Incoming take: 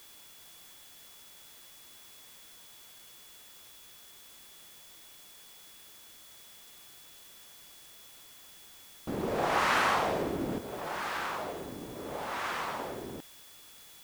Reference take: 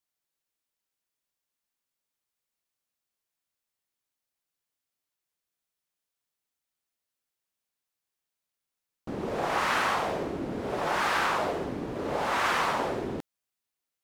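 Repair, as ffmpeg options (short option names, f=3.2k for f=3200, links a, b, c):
-af "bandreject=f=3.4k:w=30,afwtdn=0.002,asetnsamples=n=441:p=0,asendcmd='10.58 volume volume 8.5dB',volume=0dB"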